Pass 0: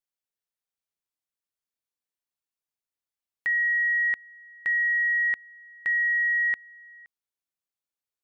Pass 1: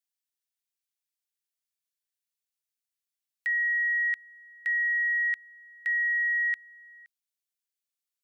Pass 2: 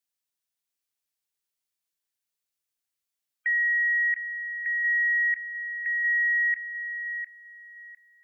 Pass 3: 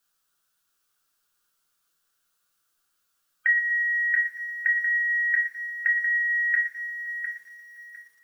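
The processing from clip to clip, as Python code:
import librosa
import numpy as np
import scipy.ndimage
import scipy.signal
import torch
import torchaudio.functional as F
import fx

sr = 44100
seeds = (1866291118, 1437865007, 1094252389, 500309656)

y1 = scipy.signal.sosfilt(scipy.signal.butter(4, 1400.0, 'highpass', fs=sr, output='sos'), x)
y1 = fx.high_shelf(y1, sr, hz=2100.0, db=9.5)
y1 = y1 * 10.0 ** (-6.5 / 20.0)
y2 = fx.spec_gate(y1, sr, threshold_db=-30, keep='strong')
y2 = fx.echo_feedback(y2, sr, ms=704, feedback_pct=23, wet_db=-8.5)
y2 = y2 * 10.0 ** (2.5 / 20.0)
y3 = fx.curve_eq(y2, sr, hz=(890.0, 1400.0, 2000.0, 3000.0), db=(0, 13, -5, 1))
y3 = fx.room_shoebox(y3, sr, seeds[0], volume_m3=32.0, walls='mixed', distance_m=0.46)
y3 = fx.echo_crushed(y3, sr, ms=116, feedback_pct=55, bits=10, wet_db=-14)
y3 = y3 * 10.0 ** (9.0 / 20.0)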